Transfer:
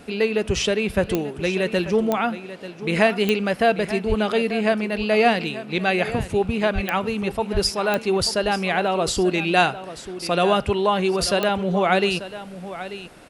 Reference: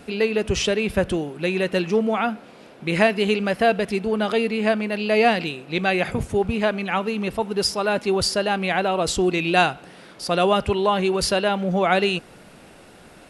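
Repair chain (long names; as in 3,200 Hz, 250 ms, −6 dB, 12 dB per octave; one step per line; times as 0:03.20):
click removal
0:04.08–0:04.20: high-pass filter 140 Hz 24 dB per octave
0:06.74–0:06.86: high-pass filter 140 Hz 24 dB per octave
0:07.53–0:07.65: high-pass filter 140 Hz 24 dB per octave
echo removal 889 ms −13.5 dB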